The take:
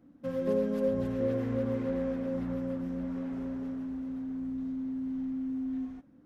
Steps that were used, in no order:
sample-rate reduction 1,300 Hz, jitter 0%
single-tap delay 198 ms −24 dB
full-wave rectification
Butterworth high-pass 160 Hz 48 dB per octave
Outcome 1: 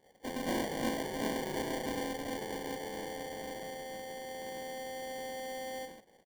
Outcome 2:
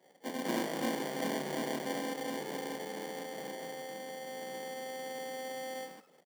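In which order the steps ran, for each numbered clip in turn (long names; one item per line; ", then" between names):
single-tap delay, then full-wave rectification, then Butterworth high-pass, then sample-rate reduction
sample-rate reduction, then single-tap delay, then full-wave rectification, then Butterworth high-pass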